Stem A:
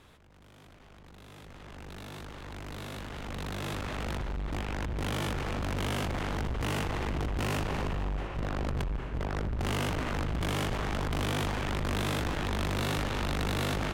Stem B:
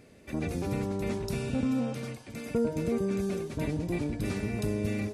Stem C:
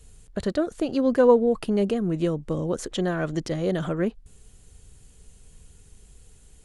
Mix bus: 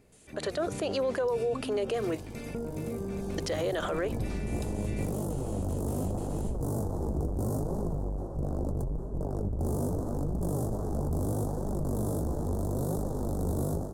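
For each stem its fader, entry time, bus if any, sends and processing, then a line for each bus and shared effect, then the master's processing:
-1.0 dB, 0.00 s, no send, flange 0.77 Hz, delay 4.5 ms, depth 9.7 ms, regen +52%; Chebyshev band-stop 560–9400 Hz, order 2
-9.5 dB, 0.00 s, no send, compressor, threshold -31 dBFS, peak gain reduction 8 dB
-1.0 dB, 0.00 s, muted 2.2–3.38, no send, HPF 430 Hz 24 dB/oct; gate with hold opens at -49 dBFS; compressor, threshold -24 dBFS, peak gain reduction 11 dB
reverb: off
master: AGC gain up to 7.5 dB; limiter -22.5 dBFS, peak gain reduction 12 dB

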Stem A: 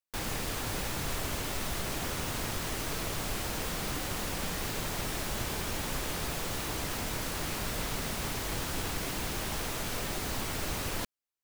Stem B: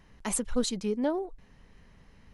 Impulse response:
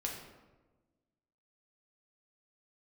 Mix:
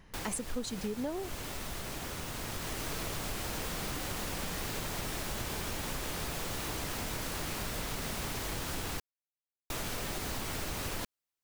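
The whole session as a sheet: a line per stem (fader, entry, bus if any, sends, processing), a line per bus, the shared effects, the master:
+1.0 dB, 0.00 s, muted 9–9.7, no send, auto duck -6 dB, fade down 0.25 s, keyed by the second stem
+1.0 dB, 0.00 s, no send, dry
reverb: off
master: compressor 5:1, threshold -33 dBFS, peak gain reduction 11.5 dB

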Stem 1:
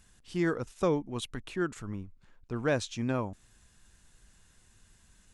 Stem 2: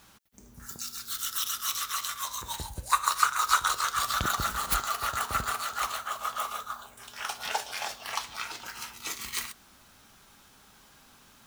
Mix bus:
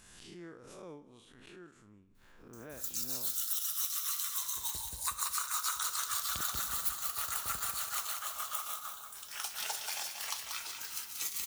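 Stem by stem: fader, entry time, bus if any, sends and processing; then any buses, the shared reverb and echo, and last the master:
-16.0 dB, 0.00 s, no send, echo send -23 dB, time blur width 0.116 s; low shelf 160 Hz -10.5 dB; backwards sustainer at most 32 dB/s
+2.0 dB, 2.15 s, no send, echo send -6.5 dB, pre-emphasis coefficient 0.8; gate with hold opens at -47 dBFS; compressor 4:1, threshold -34 dBFS, peak gain reduction 12 dB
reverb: off
echo: feedback echo 0.185 s, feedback 34%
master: dry

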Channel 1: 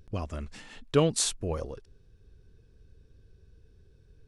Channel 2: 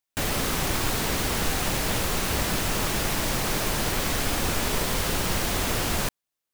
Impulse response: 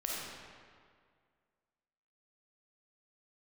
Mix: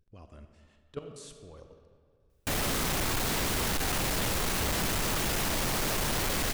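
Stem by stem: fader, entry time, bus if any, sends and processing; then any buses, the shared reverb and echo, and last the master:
-13.5 dB, 0.00 s, send -6.5 dB, level quantiser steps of 19 dB
+2.5 dB, 2.30 s, no send, dry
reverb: on, RT60 2.0 s, pre-delay 10 ms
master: soft clip -26.5 dBFS, distortion -9 dB

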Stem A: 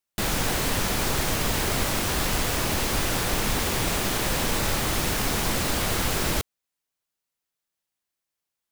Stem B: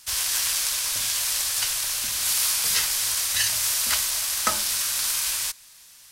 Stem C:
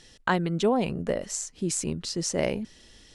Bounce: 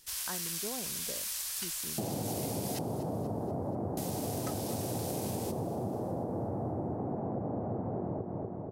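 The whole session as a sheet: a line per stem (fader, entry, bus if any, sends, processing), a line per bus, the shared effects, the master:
+2.5 dB, 1.80 s, no send, echo send -8 dB, elliptic band-pass 100–750 Hz, stop band 60 dB
-13.5 dB, 0.00 s, muted 2.79–3.97, no send, echo send -15 dB, high shelf 12000 Hz +9.5 dB
-16.0 dB, 0.00 s, no send, no echo send, dry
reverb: off
echo: feedback echo 0.241 s, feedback 54%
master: compressor 6:1, threshold -32 dBFS, peak gain reduction 9.5 dB

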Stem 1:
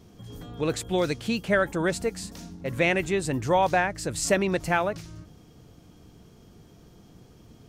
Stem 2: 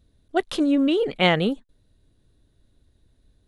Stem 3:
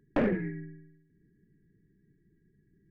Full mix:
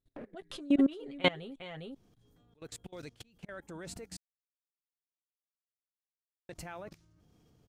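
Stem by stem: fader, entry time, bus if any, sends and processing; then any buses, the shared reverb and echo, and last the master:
-5.5 dB, 1.95 s, muted 4.17–6.49, no send, no echo send, auto swell 0.353 s
-7.0 dB, 0.00 s, no send, echo send -11 dB, comb 7.5 ms, depth 63%
-11.0 dB, 0.00 s, no send, no echo send, bell 470 Hz +4.5 dB 2 oct; auto duck -11 dB, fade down 0.25 s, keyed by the second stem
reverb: off
echo: echo 0.405 s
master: level quantiser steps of 22 dB

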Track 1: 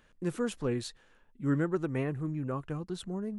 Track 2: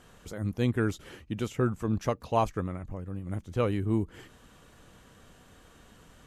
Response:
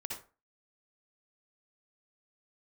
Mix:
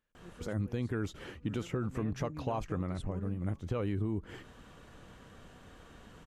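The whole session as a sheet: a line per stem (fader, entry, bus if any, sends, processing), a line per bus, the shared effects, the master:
1.61 s -20.5 dB -> 2.15 s -8 dB, 0.00 s, no send, echo send -19.5 dB, dry
+2.0 dB, 0.15 s, no send, no echo send, LPF 3600 Hz 6 dB/oct; limiter -23.5 dBFS, peak gain reduction 10.5 dB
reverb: off
echo: echo 1.001 s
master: compressor 4:1, threshold -30 dBFS, peak gain reduction 5 dB

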